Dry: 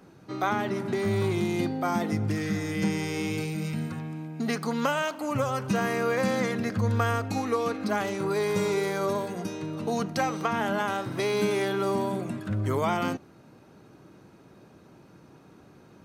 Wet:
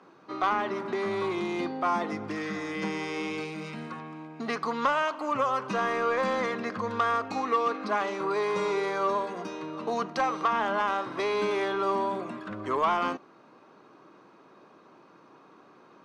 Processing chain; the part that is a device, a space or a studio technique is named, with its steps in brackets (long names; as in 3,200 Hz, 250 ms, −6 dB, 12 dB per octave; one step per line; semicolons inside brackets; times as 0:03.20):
intercom (band-pass filter 310–4,500 Hz; parametric band 1,100 Hz +10 dB 0.36 octaves; soft clipping −16.5 dBFS, distortion −19 dB)
0:07.67–0:08.54: high-pass filter 110 Hz